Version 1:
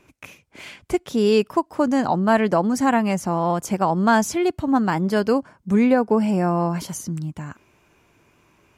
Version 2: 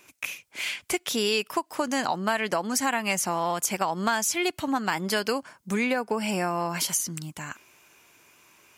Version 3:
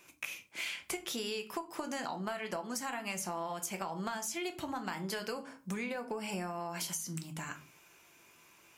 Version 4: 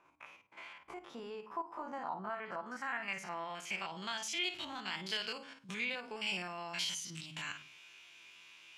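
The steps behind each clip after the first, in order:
spectral tilt +3.5 dB per octave; downward compressor 6 to 1, threshold −23 dBFS, peak gain reduction 10.5 dB; dynamic equaliser 2,500 Hz, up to +5 dB, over −46 dBFS, Q 1.1
rectangular room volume 180 cubic metres, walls furnished, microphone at 0.78 metres; downward compressor, threshold −30 dBFS, peak gain reduction 11.5 dB; level −5 dB
spectrum averaged block by block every 50 ms; first-order pre-emphasis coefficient 0.9; low-pass filter sweep 1,000 Hz → 3,200 Hz, 0:02.03–0:04.09; level +12 dB

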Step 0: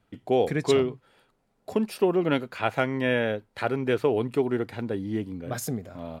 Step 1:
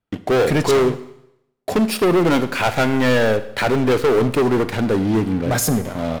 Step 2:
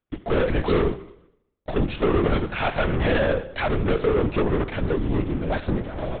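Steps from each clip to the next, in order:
leveller curve on the samples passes 5; four-comb reverb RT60 0.79 s, combs from 32 ms, DRR 12.5 dB; level −3 dB
linear-prediction vocoder at 8 kHz whisper; level −5 dB

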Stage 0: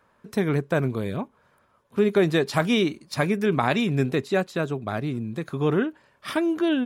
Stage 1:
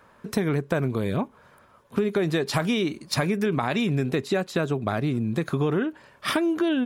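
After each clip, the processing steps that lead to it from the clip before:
in parallel at −0.5 dB: brickwall limiter −17 dBFS, peak gain reduction 10.5 dB
on the sum: downward compressor, threshold −23 dBFS, peak gain reduction 11 dB
level +2 dB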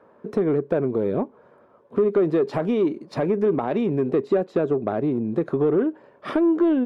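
resonant band-pass 420 Hz, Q 1.4
soft clipping −19.5 dBFS, distortion −20 dB
level +8 dB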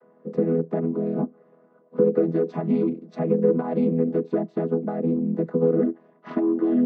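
channel vocoder with a chord as carrier major triad, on E3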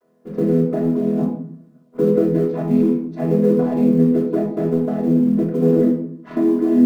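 mu-law and A-law mismatch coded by A
rectangular room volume 980 cubic metres, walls furnished, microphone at 3.1 metres

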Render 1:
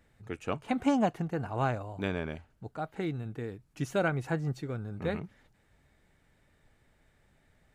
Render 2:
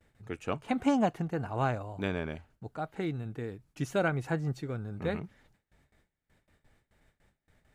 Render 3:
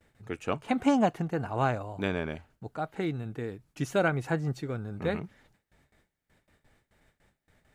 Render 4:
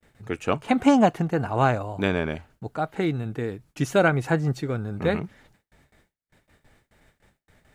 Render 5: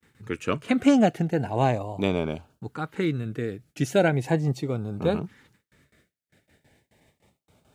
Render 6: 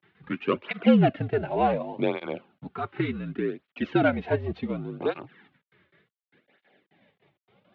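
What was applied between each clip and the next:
noise gate with hold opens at −56 dBFS
low-shelf EQ 110 Hz −4.5 dB; level +3 dB
noise gate with hold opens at −57 dBFS; level +6.5 dB
high-pass filter 83 Hz; auto-filter notch saw up 0.38 Hz 610–2,100 Hz
variable-slope delta modulation 64 kbit/s; single-sideband voice off tune −56 Hz 210–3,500 Hz; through-zero flanger with one copy inverted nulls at 0.68 Hz, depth 4.4 ms; level +4 dB

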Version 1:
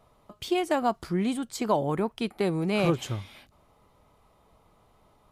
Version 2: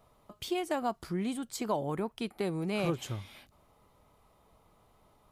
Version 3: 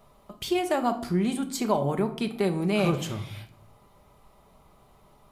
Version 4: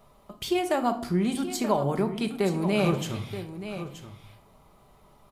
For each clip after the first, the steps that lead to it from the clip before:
high-shelf EQ 9,900 Hz +6 dB; in parallel at −1 dB: downward compressor, threshold −34 dBFS, peak gain reduction 14.5 dB; on the sum: level −8.5 dB
rectangular room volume 910 cubic metres, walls furnished, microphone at 1.2 metres; level +5.5 dB
single-tap delay 927 ms −11.5 dB

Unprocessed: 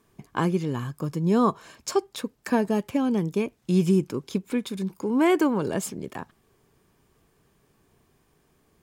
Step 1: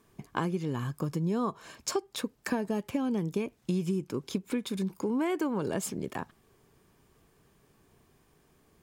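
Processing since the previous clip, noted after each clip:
downward compressor 6 to 1, threshold −27 dBFS, peak gain reduction 11 dB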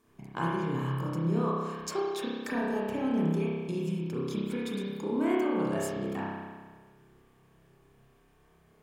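spring reverb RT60 1.5 s, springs 30 ms, chirp 65 ms, DRR −6.5 dB
level −5.5 dB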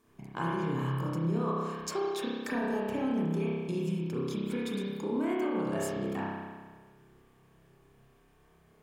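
brickwall limiter −22.5 dBFS, peak gain reduction 6 dB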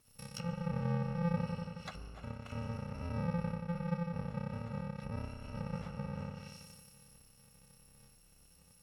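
samples in bit-reversed order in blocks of 128 samples
treble cut that deepens with the level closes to 1,300 Hz, closed at −31.5 dBFS
level +1.5 dB

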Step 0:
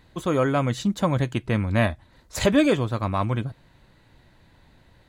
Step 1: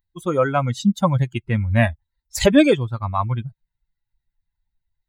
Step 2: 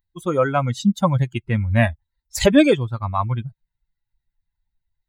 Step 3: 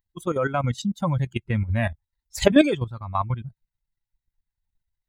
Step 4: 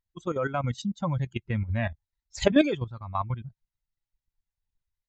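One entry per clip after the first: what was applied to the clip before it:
spectral dynamics exaggerated over time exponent 2; level +7.5 dB
no processing that can be heard
output level in coarse steps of 11 dB
downsampling to 16,000 Hz; level −4.5 dB

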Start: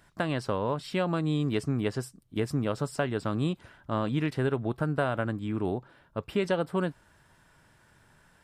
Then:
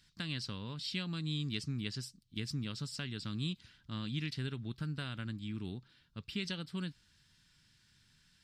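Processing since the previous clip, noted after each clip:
drawn EQ curve 210 Hz 0 dB, 640 Hz −20 dB, 4,500 Hz +14 dB, 9,800 Hz −1 dB
level −7.5 dB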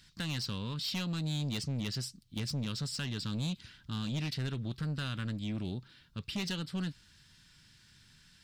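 soft clipping −37 dBFS, distortion −11 dB
level +7 dB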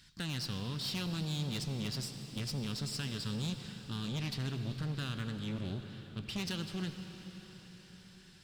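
one-sided soft clipper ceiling −36.5 dBFS
convolution reverb RT60 5.7 s, pre-delay 57 ms, DRR 7 dB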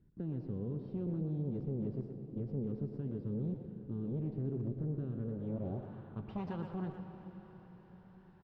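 low-pass filter sweep 410 Hz → 890 Hz, 0:05.15–0:05.94
far-end echo of a speakerphone 120 ms, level −7 dB
level −1.5 dB

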